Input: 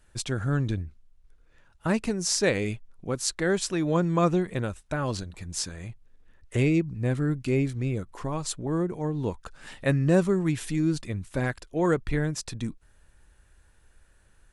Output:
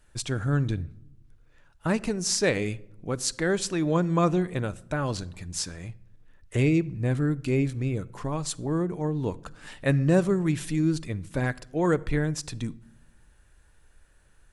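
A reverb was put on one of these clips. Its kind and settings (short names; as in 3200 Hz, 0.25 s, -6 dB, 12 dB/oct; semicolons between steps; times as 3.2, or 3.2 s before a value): shoebox room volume 2600 m³, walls furnished, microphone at 0.39 m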